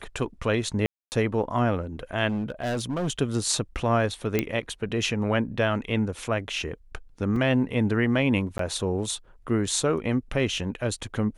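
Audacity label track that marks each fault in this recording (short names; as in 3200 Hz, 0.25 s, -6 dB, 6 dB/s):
0.860000	1.120000	gap 0.259 s
2.290000	3.090000	clipped -24 dBFS
4.390000	4.390000	pop -9 dBFS
7.360000	7.360000	gap 3.4 ms
8.580000	8.590000	gap 13 ms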